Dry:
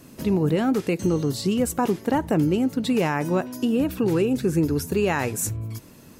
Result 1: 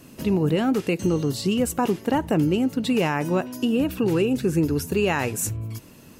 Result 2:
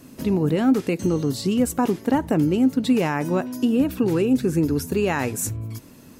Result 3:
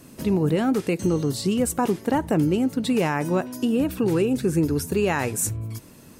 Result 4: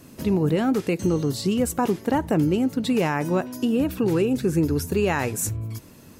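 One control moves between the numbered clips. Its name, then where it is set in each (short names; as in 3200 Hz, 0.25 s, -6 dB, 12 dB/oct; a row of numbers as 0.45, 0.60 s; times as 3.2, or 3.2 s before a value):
bell, frequency: 2800, 260, 8900, 87 Hz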